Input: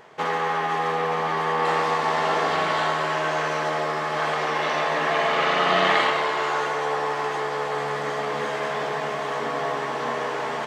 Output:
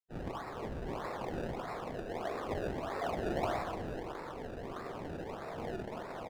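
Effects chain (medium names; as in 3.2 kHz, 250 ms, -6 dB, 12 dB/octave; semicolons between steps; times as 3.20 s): feedback comb 230 Hz, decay 0.24 s, harmonics all, mix 90%; whisper effect; reverb removal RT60 0.66 s; reverberation RT60 0.80 s, pre-delay 43 ms, DRR -2 dB; bit crusher 7-bit; plain phase-vocoder stretch 0.59×; decimation with a swept rate 28×, swing 100% 1.6 Hz; low-pass 1.3 kHz 6 dB/octave; delay 194 ms -15.5 dB; trim -2 dB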